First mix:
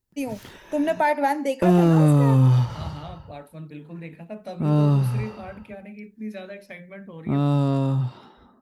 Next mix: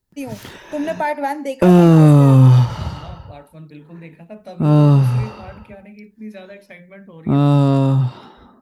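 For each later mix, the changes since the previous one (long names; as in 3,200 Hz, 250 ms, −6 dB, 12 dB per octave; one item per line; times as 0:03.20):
background +7.5 dB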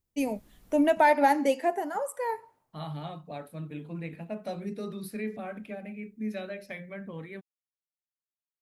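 background: muted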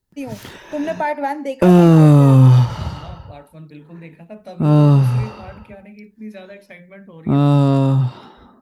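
first voice: add high-shelf EQ 5,800 Hz −8 dB
background: unmuted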